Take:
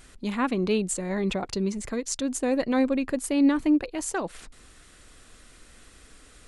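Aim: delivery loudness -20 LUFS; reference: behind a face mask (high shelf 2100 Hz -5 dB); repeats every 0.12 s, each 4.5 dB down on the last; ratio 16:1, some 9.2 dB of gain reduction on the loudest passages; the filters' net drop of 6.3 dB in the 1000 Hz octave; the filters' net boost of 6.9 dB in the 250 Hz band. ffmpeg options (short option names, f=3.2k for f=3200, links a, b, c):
-af "equalizer=f=250:t=o:g=8.5,equalizer=f=1k:t=o:g=-8,acompressor=threshold=-19dB:ratio=16,highshelf=f=2.1k:g=-5,aecho=1:1:120|240|360|480|600|720|840|960|1080:0.596|0.357|0.214|0.129|0.0772|0.0463|0.0278|0.0167|0.01,volume=3.5dB"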